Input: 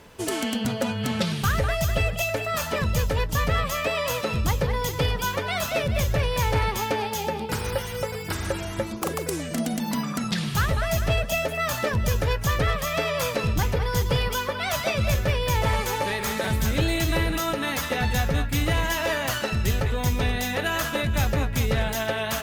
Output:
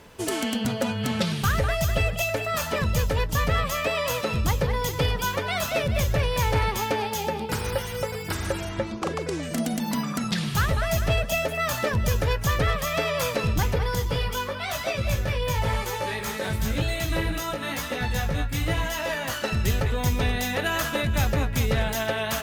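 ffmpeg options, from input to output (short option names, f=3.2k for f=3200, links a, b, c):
-filter_complex "[0:a]asettb=1/sr,asplit=3[a][b][c];[a]atrim=end=8.694[d];[b]atrim=start=8.69:end=9.43,asetpts=PTS-STARTPTS,afade=t=in:d=0.004:c=qsin,afade=t=out:st=0.736:d=0.004:c=qsin,lowpass=5.3k[e];[c]atrim=start=9.426[f];[d][e]acrossfade=d=0.004:c1=hsin:c2=qsin[g];[g][f]acrossfade=d=0.004:c1=qsin:c2=hsin,asettb=1/sr,asplit=3[h][i][j];[h]atrim=end=13.954[k];[i]atrim=start=13.95:end=19.44,asetpts=PTS-STARTPTS,afade=t=in:d=0.004:c=qsin,afade=t=out:st=5.486:d=0.004:c=qsin,flanger=delay=16.5:depth=3.7:speed=1[l];[j]atrim=start=19.436[m];[k][l]acrossfade=d=0.004:c1=hsin:c2=qsin[n];[n][m]acrossfade=d=0.004:c1=qsin:c2=hsin"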